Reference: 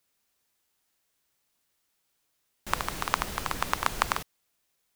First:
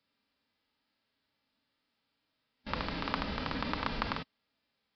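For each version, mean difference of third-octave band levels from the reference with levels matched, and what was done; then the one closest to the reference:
10.0 dB: parametric band 260 Hz +6.5 dB 0.68 octaves
harmonic and percussive parts rebalanced percussive −13 dB
notch comb filter 360 Hz
downsampling to 11,025 Hz
level +5 dB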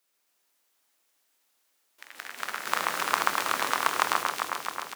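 5.0 dB: high-pass filter 320 Hz 12 dB per octave
double-tracking delay 28 ms −13 dB
delay that swaps between a low-pass and a high-pass 133 ms, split 2,300 Hz, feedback 84%, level −2 dB
delay with pitch and tempo change per echo 133 ms, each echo +3 semitones, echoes 3, each echo −6 dB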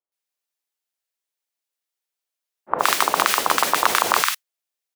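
7.5 dB: downward expander −27 dBFS
high-pass filter 430 Hz 12 dB per octave
multiband delay without the direct sound lows, highs 120 ms, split 1,200 Hz
boost into a limiter +24 dB
level −1 dB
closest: second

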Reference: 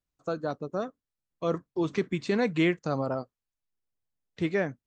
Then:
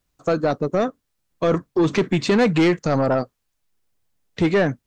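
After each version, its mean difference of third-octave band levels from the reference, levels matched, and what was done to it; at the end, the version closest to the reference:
3.5 dB: in parallel at −0.5 dB: brickwall limiter −23 dBFS, peak gain reduction 10.5 dB
on the sum: soft clipping −20.5 dBFS, distortion −13 dB
level +9 dB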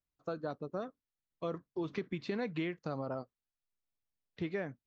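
2.0 dB: low-pass filter 5,100 Hz 24 dB per octave
downward compressor, threshold −27 dBFS, peak gain reduction 7.5 dB
level −5.5 dB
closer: second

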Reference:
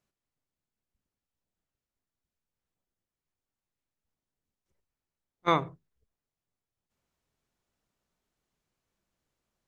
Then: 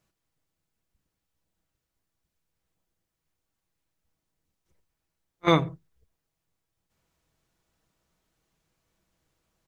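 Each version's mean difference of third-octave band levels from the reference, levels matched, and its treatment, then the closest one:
2.0 dB: parametric band 76 Hz +8.5 dB 0.52 octaves
comb filter 6.2 ms, depth 36%
on a send: backwards echo 32 ms −18.5 dB
on the sum: dynamic equaliser 980 Hz, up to −8 dB, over −36 dBFS, Q 0.95
level +6.5 dB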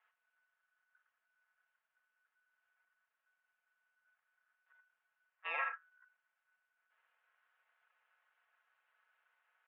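14.5 dB: comb filter 5.1 ms, depth 71%
brickwall limiter −32 dBFS, peak gain reduction 22.5 dB
ring modulation 1,400 Hz
single-sideband voice off tune +91 Hz 490–2,900 Hz
level +7.5 dB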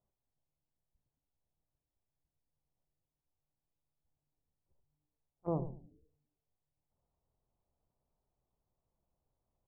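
9.5 dB: inverse Chebyshev low-pass filter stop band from 2,300 Hz, stop band 50 dB
parametric band 270 Hz −10 dB 2.2 octaves
treble cut that deepens with the level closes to 400 Hz, closed at −52.5 dBFS
echo with shifted repeats 107 ms, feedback 34%, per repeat −150 Hz, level −11.5 dB
level +4.5 dB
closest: first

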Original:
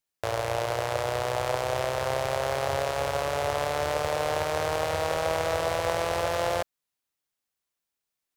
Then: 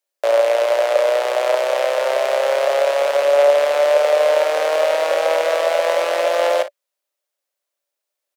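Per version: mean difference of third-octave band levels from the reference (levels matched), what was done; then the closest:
10.0 dB: high-pass filter 340 Hz 24 dB per octave
parametric band 580 Hz +14 dB 0.29 octaves
ambience of single reflections 35 ms −13 dB, 56 ms −15 dB
dynamic equaliser 2,400 Hz, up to +6 dB, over −40 dBFS, Q 0.78
level +3 dB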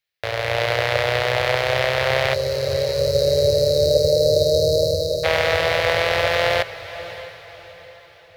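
7.5 dB: time-frequency box erased 0:02.34–0:05.24, 640–3,800 Hz
octave-band graphic EQ 125/250/500/1,000/2,000/4,000/8,000 Hz +6/−10/+6/−4/+11/+9/−8 dB
automatic gain control gain up to 11.5 dB
feedback delay with all-pass diffusion 626 ms, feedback 41%, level −14.5 dB
level −1 dB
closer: second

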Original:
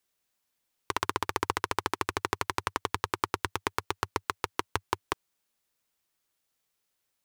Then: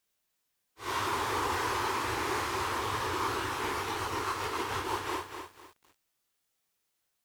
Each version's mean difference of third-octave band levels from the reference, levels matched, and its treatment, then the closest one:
7.0 dB: random phases in long frames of 200 ms
feedback echo at a low word length 251 ms, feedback 35%, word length 9 bits, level −7 dB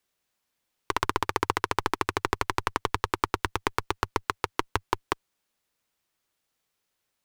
1.5 dB: high-shelf EQ 5,800 Hz −5.5 dB
in parallel at −5 dB: comparator with hysteresis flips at −31.5 dBFS
on the sum: level +3 dB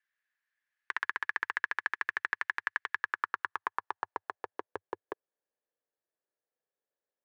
13.5 dB: parametric band 1,700 Hz +11.5 dB 0.25 octaves
band-pass filter sweep 1,800 Hz → 500 Hz, 0:02.89–0:04.77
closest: second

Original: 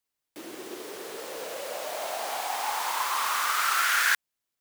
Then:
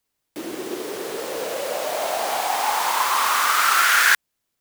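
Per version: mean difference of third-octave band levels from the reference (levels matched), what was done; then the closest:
1.5 dB: low-shelf EQ 490 Hz +5.5 dB
level +7 dB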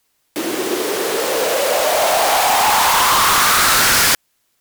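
5.5 dB: sine wavefolder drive 15 dB, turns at −11 dBFS
level +1 dB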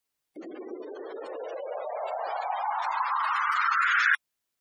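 16.0 dB: gate on every frequency bin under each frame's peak −15 dB strong
level +2 dB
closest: first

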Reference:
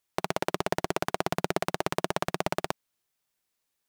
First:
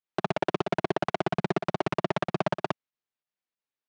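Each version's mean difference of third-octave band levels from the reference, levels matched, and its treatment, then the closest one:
7.0 dB: leveller curve on the samples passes 5
brickwall limiter −15.5 dBFS, peak gain reduction 8.5 dB
fake sidechain pumping 93 BPM, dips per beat 2, −12 dB, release 74 ms
band-pass filter 130–3,700 Hz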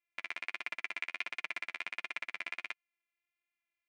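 13.5 dB: samples sorted by size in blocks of 128 samples
resonant band-pass 2,300 Hz, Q 6.7
flanger 1.4 Hz, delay 6.1 ms, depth 6.1 ms, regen −14%
level +7 dB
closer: first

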